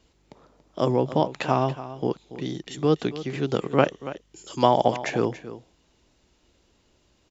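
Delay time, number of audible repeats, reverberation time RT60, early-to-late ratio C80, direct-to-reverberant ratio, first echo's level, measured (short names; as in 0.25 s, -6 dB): 0.283 s, 1, none, none, none, -14.5 dB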